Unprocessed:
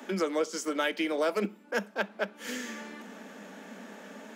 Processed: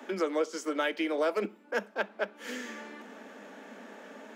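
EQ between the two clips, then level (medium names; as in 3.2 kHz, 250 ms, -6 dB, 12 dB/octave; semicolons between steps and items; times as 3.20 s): high-pass 240 Hz 24 dB/octave; treble shelf 4.3 kHz -8 dB; 0.0 dB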